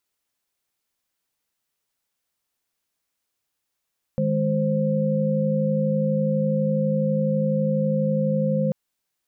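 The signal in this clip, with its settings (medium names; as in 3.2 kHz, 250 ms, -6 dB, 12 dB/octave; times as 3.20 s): chord D#3/G#3/C5 sine, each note -23.5 dBFS 4.54 s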